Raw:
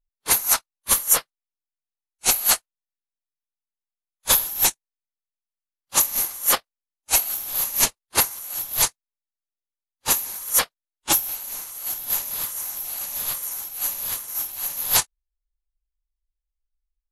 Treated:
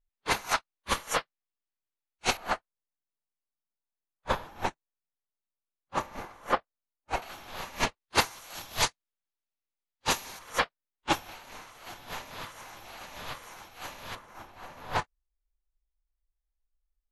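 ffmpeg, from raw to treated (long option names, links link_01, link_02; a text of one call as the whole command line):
ffmpeg -i in.wav -af "asetnsamples=nb_out_samples=441:pad=0,asendcmd='2.37 lowpass f 1400;7.22 lowpass f 2500;8.01 lowpass f 4300;10.39 lowpass f 2600;14.15 lowpass f 1500',lowpass=3100" out.wav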